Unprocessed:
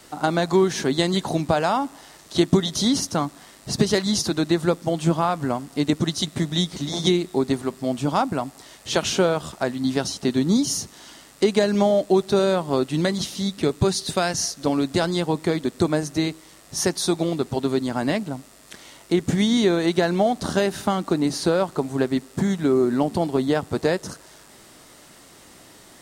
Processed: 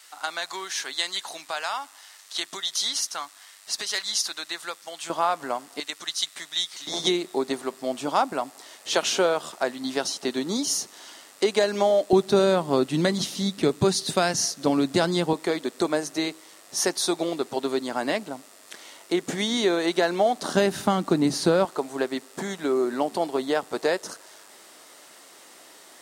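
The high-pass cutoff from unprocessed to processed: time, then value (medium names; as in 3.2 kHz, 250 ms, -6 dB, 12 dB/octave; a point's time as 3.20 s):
1.4 kHz
from 5.10 s 550 Hz
from 5.80 s 1.4 kHz
from 6.87 s 400 Hz
from 12.13 s 150 Hz
from 15.33 s 370 Hz
from 20.55 s 100 Hz
from 21.65 s 420 Hz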